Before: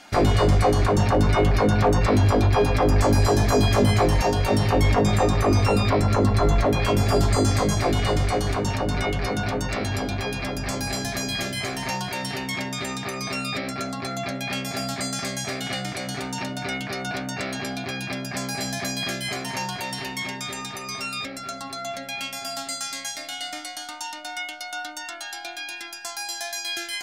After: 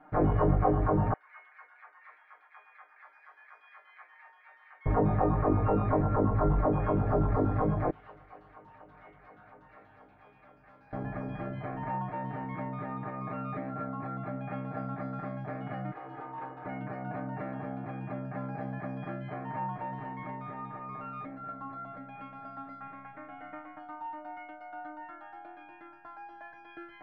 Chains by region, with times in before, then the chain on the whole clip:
0:01.13–0:04.86: four-pole ladder high-pass 1,700 Hz, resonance 40% + notch filter 2,800 Hz, Q 10
0:07.90–0:10.93: first-order pre-emphasis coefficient 0.97 + highs frequency-modulated by the lows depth 0.21 ms
0:15.91–0:16.66: lower of the sound and its delayed copy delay 2.4 ms + high-pass filter 360 Hz 6 dB per octave
0:22.80–0:23.78: ceiling on every frequency bin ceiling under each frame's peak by 12 dB + high shelf with overshoot 3,400 Hz −11 dB, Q 1.5
whole clip: low-pass filter 1,400 Hz 24 dB per octave; comb filter 6.5 ms, depth 91%; level −8 dB

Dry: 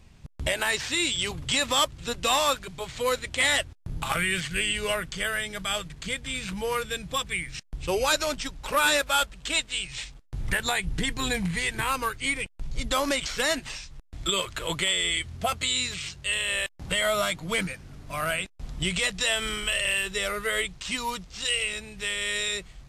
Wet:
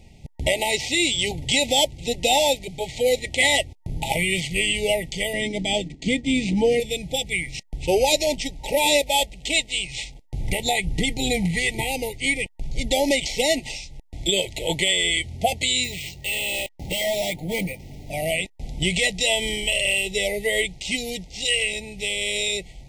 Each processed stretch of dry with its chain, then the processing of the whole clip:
0:05.33–0:06.80: low-pass filter 8,200 Hz 24 dB per octave + downward expander −37 dBFS + hollow resonant body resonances 270/1,300 Hz, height 15 dB, ringing for 30 ms
0:15.84–0:18.10: bad sample-rate conversion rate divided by 4×, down none, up hold + hard clipping −27.5 dBFS
whole clip: brick-wall band-stop 910–1,900 Hz; parametric band 570 Hz +3.5 dB 2.9 octaves; level +4 dB

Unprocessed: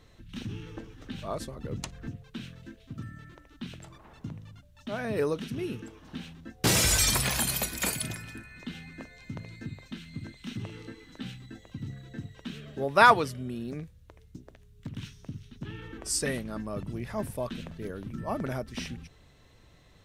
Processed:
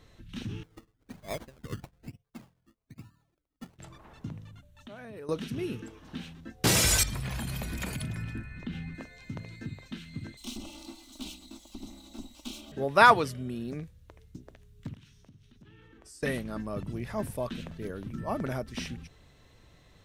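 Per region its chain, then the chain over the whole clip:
0:00.63–0:03.79: notch filter 1,200 Hz, Q 6.4 + sample-and-hold swept by an LFO 22×, swing 60% 1.1 Hz + expander for the loud parts 2.5 to 1, over −52 dBFS
0:04.47–0:05.29: parametric band 5,100 Hz −8 dB 0.29 octaves + downward compressor 4 to 1, threshold −44 dBFS
0:07.03–0:08.95: bass and treble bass +10 dB, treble −9 dB + downward compressor 12 to 1, threshold −30 dBFS
0:10.37–0:12.72: lower of the sound and its delayed copy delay 3.4 ms + high-shelf EQ 2,600 Hz +11.5 dB + phaser with its sweep stopped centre 470 Hz, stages 6
0:14.94–0:16.23: downward compressor 3 to 1, threshold −48 dBFS + tuned comb filter 72 Hz, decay 1.9 s, mix 50%
whole clip: no processing

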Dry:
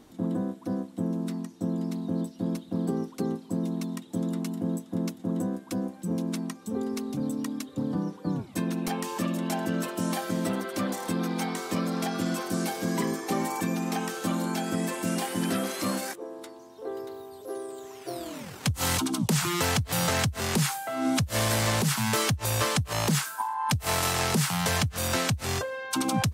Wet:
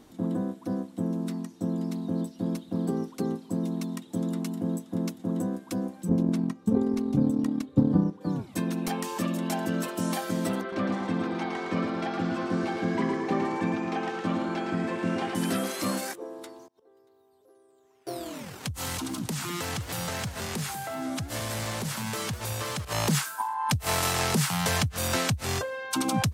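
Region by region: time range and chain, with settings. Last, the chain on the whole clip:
0:06.09–0:08.21: spectral tilt −2.5 dB per octave + hum removal 320.9 Hz, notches 14 + transient designer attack +6 dB, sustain −6 dB
0:10.61–0:15.35: low-pass filter 2,900 Hz + repeating echo 112 ms, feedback 45%, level −5 dB
0:16.66–0:18.07: gate with flip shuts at −39 dBFS, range −25 dB + multiband upward and downward compressor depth 70%
0:18.64–0:22.85: downward compressor 2.5 to 1, threshold −32 dBFS + feedback echo with a swinging delay time 194 ms, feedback 53%, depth 201 cents, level −12 dB
whole clip: no processing

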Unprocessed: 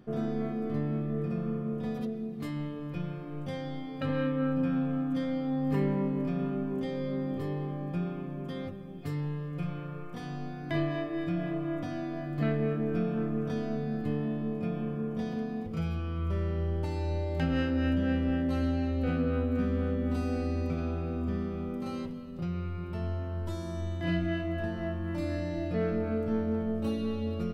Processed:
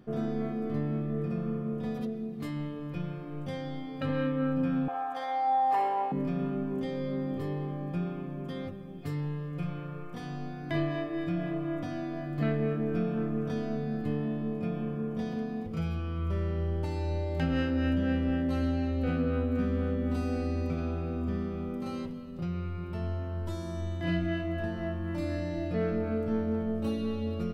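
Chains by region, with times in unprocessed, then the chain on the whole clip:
0:04.88–0:06.12: high-pass with resonance 770 Hz, resonance Q 8.3 + flutter between parallel walls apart 10.9 metres, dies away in 0.58 s
whole clip: no processing

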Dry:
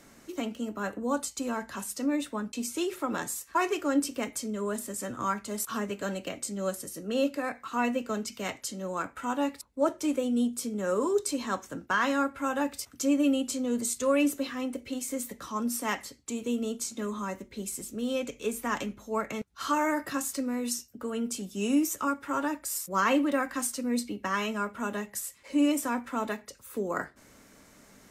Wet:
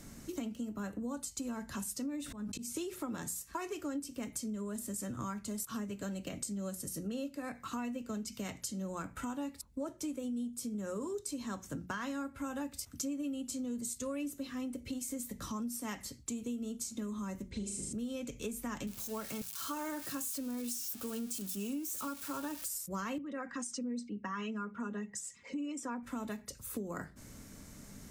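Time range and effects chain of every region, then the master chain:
0:02.22–0:02.77: volume swells 274 ms + level that may fall only so fast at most 75 dB per second
0:17.50–0:17.93: Butterworth low-pass 9,100 Hz + flutter between parallel walls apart 6.8 metres, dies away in 0.67 s
0:18.87–0:22.68: spike at every zero crossing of −25.5 dBFS + bass and treble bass −6 dB, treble −5 dB + notch filter 2,000 Hz, Q 11
0:23.18–0:26.03: spectral envelope exaggerated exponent 1.5 + loudspeaker in its box 150–6,900 Hz, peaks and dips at 280 Hz −7 dB, 610 Hz −6 dB, 4,300 Hz −4 dB + comb filter 4.2 ms, depth 37%
whole clip: bass and treble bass +15 dB, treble +7 dB; mains-hum notches 60/120/180 Hz; downward compressor 6 to 1, threshold −34 dBFS; level −3 dB

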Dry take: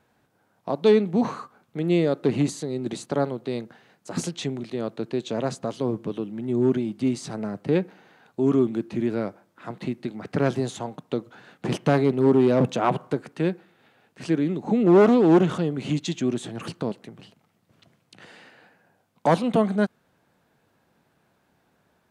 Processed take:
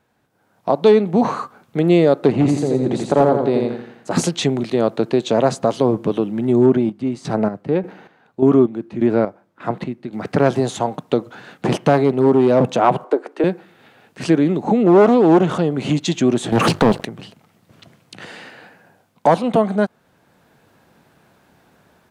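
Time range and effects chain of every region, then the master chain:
0:02.32–0:04.11: high-shelf EQ 2,500 Hz −10 dB + repeating echo 85 ms, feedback 42%, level −3 dB + gain into a clipping stage and back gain 15 dB
0:06.66–0:10.13: high-shelf EQ 3,500 Hz −10 dB + square-wave tremolo 1.7 Hz, depth 65%, duty 40%
0:13.04–0:13.44: Butterworth high-pass 320 Hz + spectral tilt −3 dB per octave
0:16.52–0:17.05: mains-hum notches 50/100/150 Hz + leveller curve on the samples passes 3 + highs frequency-modulated by the lows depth 0.13 ms
whole clip: downward compressor 1.5 to 1, threshold −28 dBFS; dynamic equaliser 740 Hz, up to +6 dB, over −40 dBFS, Q 0.91; automatic gain control gain up to 11.5 dB

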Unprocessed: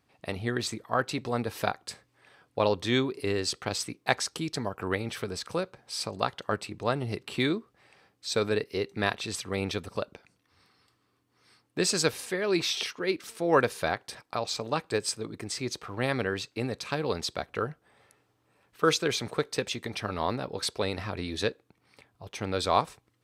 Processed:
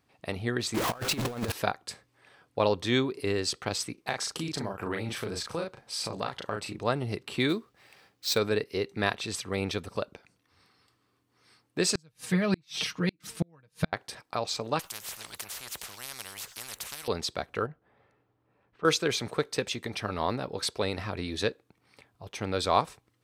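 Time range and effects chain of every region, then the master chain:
0:00.74–0:01.52: converter with a step at zero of −26.5 dBFS + transient designer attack +4 dB, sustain −6 dB + compressor whose output falls as the input rises −30 dBFS, ratio −0.5
0:03.94–0:06.81: double-tracking delay 36 ms −3.5 dB + downward compressor 2.5 to 1, threshold −29 dBFS
0:07.49–0:08.38: running median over 5 samples + high-shelf EQ 2,800 Hz +9.5 dB
0:11.95–0:13.93: low shelf with overshoot 260 Hz +11 dB, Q 1.5 + comb filter 6.4 ms + gate with flip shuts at −15 dBFS, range −40 dB
0:14.79–0:17.08: guitar amp tone stack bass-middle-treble 10-0-10 + every bin compressed towards the loudest bin 10 to 1
0:17.66–0:18.85: downward compressor 1.5 to 1, threshold −45 dBFS + head-to-tape spacing loss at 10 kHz 31 dB
whole clip: no processing

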